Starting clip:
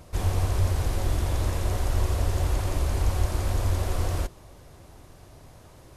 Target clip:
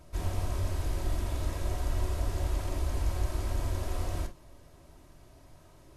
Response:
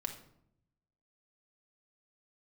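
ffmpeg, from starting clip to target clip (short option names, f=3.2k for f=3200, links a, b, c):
-filter_complex "[1:a]atrim=start_sample=2205,atrim=end_sample=3528,asetrate=57330,aresample=44100[a];[0:a][a]afir=irnorm=-1:irlink=0,volume=-4dB"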